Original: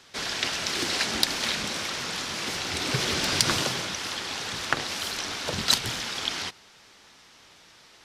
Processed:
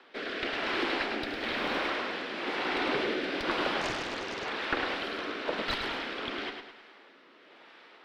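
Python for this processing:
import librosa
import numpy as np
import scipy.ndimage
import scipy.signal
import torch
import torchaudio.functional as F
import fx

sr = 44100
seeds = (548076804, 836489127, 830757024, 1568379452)

p1 = scipy.signal.sosfilt(scipy.signal.butter(4, 270.0, 'highpass', fs=sr, output='sos'), x)
p2 = fx.rider(p1, sr, range_db=10, speed_s=0.5)
p3 = p1 + (p2 * librosa.db_to_amplitude(0.0))
p4 = fx.quant_dither(p3, sr, seeds[0], bits=6, dither='triangular', at=(1.22, 1.77), fade=0.02)
p5 = fx.rotary(p4, sr, hz=1.0)
p6 = fx.tube_stage(p5, sr, drive_db=15.0, bias=0.25)
p7 = fx.air_absorb(p6, sr, metres=450.0)
p8 = p7 + fx.echo_feedback(p7, sr, ms=105, feedback_pct=43, wet_db=-6.0, dry=0)
y = fx.doppler_dist(p8, sr, depth_ms=0.94, at=(3.81, 4.49))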